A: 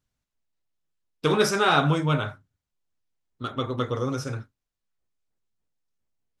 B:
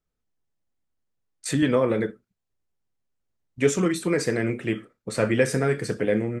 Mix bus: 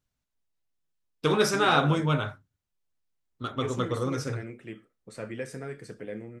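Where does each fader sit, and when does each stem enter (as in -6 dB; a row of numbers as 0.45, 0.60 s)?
-2.0, -15.0 dB; 0.00, 0.00 s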